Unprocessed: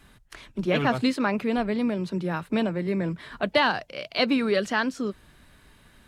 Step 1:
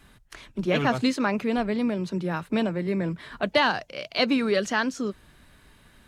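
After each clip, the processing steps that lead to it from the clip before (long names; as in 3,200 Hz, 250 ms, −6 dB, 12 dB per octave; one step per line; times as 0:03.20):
dynamic equaliser 6,400 Hz, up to +7 dB, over −57 dBFS, Q 3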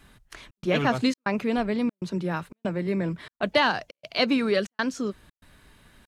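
gate pattern "xxxx.xxxx.x" 119 BPM −60 dB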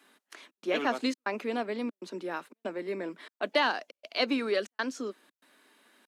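Butterworth high-pass 250 Hz 36 dB per octave
level −4.5 dB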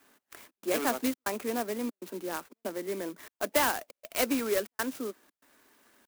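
converter with an unsteady clock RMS 0.068 ms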